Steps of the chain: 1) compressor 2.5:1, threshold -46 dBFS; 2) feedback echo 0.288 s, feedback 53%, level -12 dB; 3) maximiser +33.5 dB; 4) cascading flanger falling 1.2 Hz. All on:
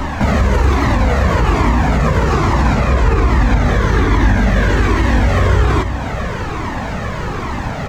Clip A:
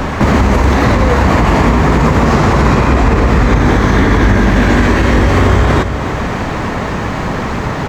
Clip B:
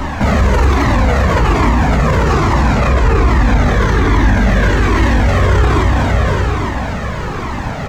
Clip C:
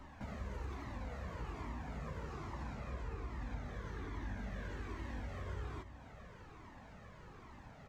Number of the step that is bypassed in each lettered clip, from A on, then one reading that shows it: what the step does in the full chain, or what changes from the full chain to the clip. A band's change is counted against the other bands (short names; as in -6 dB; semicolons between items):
4, crest factor change -2.5 dB; 1, mean gain reduction 11.0 dB; 3, momentary loudness spread change +3 LU